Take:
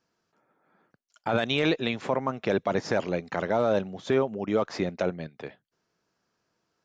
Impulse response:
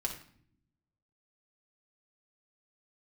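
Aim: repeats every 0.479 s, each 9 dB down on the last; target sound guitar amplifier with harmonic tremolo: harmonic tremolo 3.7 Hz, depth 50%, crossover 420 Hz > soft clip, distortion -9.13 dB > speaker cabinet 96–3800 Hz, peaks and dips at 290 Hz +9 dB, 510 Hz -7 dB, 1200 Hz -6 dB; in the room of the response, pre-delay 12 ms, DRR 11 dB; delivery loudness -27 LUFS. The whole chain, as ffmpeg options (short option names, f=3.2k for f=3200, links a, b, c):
-filter_complex "[0:a]aecho=1:1:479|958|1437|1916:0.355|0.124|0.0435|0.0152,asplit=2[a][b];[1:a]atrim=start_sample=2205,adelay=12[c];[b][c]afir=irnorm=-1:irlink=0,volume=-13.5dB[d];[a][d]amix=inputs=2:normalize=0,acrossover=split=420[e][f];[e]aeval=exprs='val(0)*(1-0.5/2+0.5/2*cos(2*PI*3.7*n/s))':c=same[g];[f]aeval=exprs='val(0)*(1-0.5/2-0.5/2*cos(2*PI*3.7*n/s))':c=same[h];[g][h]amix=inputs=2:normalize=0,asoftclip=threshold=-27.5dB,highpass=96,equalizer=f=290:t=q:w=4:g=9,equalizer=f=510:t=q:w=4:g=-7,equalizer=f=1.2k:t=q:w=4:g=-6,lowpass=f=3.8k:w=0.5412,lowpass=f=3.8k:w=1.3066,volume=7dB"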